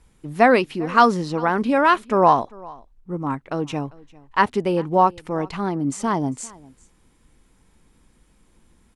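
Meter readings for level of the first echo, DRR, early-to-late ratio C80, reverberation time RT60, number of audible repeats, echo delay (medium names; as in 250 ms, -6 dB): -23.0 dB, no reverb, no reverb, no reverb, 1, 398 ms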